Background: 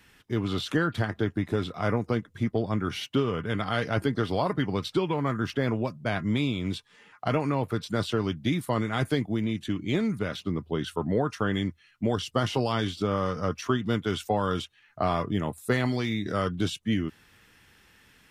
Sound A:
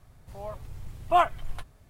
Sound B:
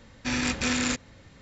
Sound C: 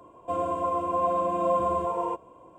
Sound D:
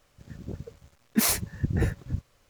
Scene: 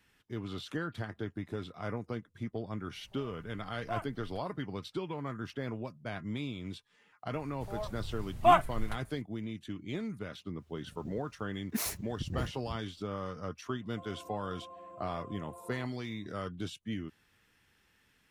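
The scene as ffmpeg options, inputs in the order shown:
-filter_complex "[1:a]asplit=2[a][b];[0:a]volume=-11dB[c];[3:a]acompressor=threshold=-28dB:ratio=6:attack=3.2:release=140:knee=1:detection=peak[d];[a]atrim=end=1.89,asetpts=PTS-STARTPTS,volume=-17.5dB,afade=t=in:d=0.004:c=hsin,afade=t=out:st=1.886:d=0.004:c=hsin,adelay=2770[e];[b]atrim=end=1.89,asetpts=PTS-STARTPTS,volume=-1dB,afade=t=in:d=0.004:c=hsin,afade=t=out:st=1.886:d=0.004:c=hsin,adelay=7330[f];[4:a]atrim=end=2.49,asetpts=PTS-STARTPTS,volume=-11dB,afade=t=in:d=0.05,afade=t=out:st=2.44:d=0.05,adelay=10570[g];[d]atrim=end=2.58,asetpts=PTS-STARTPTS,volume=-18dB,afade=t=in:d=0.004:c=hsin,afade=t=out:st=2.576:d=0.004:c=hsin,adelay=13690[h];[c][e][f][g][h]amix=inputs=5:normalize=0"

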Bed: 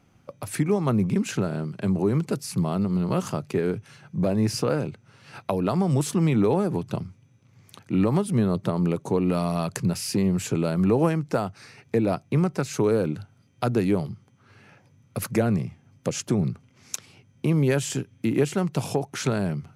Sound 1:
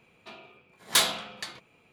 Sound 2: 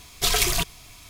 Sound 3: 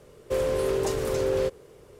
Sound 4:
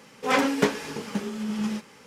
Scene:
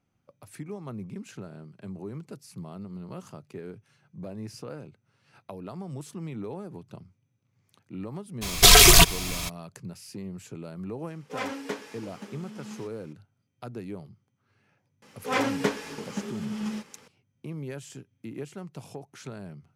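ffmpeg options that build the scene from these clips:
-filter_complex "[4:a]asplit=2[a][b];[0:a]volume=-15.5dB[c];[2:a]alimiter=level_in=16dB:limit=-1dB:release=50:level=0:latency=1[d];[a]highpass=210[e];[d]atrim=end=1.09,asetpts=PTS-STARTPTS,volume=-1.5dB,afade=t=in:d=0.02,afade=t=out:st=1.07:d=0.02,adelay=8410[f];[e]atrim=end=2.06,asetpts=PTS-STARTPTS,volume=-11dB,afade=t=in:d=0.004:c=hsin,afade=t=out:st=2.056:d=0.004:c=hsin,adelay=11070[g];[b]atrim=end=2.06,asetpts=PTS-STARTPTS,volume=-4dB,afade=t=in:d=0.004:c=hsin,afade=t=out:st=2.056:d=0.004:c=hsin,adelay=15020[h];[c][f][g][h]amix=inputs=4:normalize=0"

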